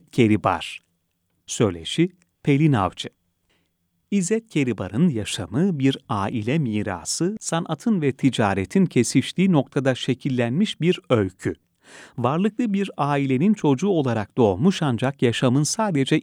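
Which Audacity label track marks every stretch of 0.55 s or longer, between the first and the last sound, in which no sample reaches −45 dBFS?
0.780000	1.480000	silence
3.080000	4.120000	silence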